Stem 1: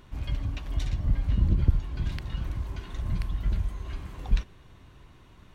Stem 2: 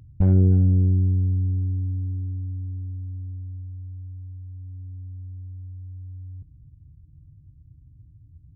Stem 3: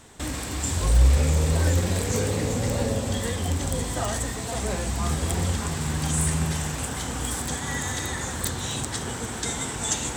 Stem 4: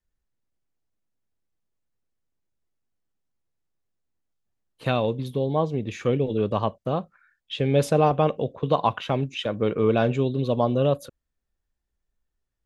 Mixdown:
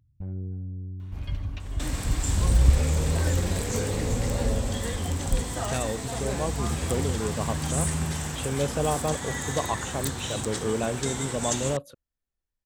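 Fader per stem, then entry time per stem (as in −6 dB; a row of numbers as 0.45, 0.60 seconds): −2.0, −17.5, −3.0, −7.0 decibels; 1.00, 0.00, 1.60, 0.85 seconds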